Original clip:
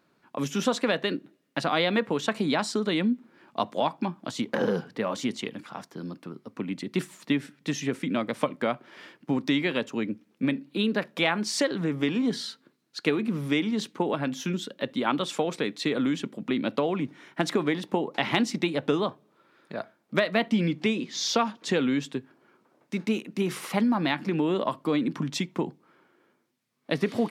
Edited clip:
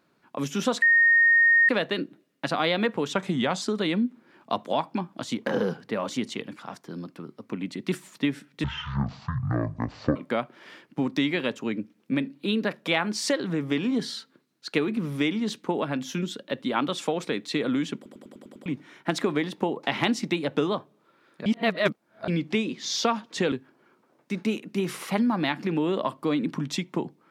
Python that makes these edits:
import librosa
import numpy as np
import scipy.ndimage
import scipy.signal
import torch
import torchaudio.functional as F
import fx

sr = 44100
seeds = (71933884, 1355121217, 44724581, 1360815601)

y = fx.edit(x, sr, fx.insert_tone(at_s=0.82, length_s=0.87, hz=1850.0, db=-15.0),
    fx.speed_span(start_s=2.26, length_s=0.43, speed=0.88),
    fx.speed_span(start_s=7.71, length_s=0.76, speed=0.5),
    fx.stutter_over(start_s=16.27, slice_s=0.1, count=7),
    fx.reverse_span(start_s=19.77, length_s=0.82),
    fx.cut(start_s=21.83, length_s=0.31), tone=tone)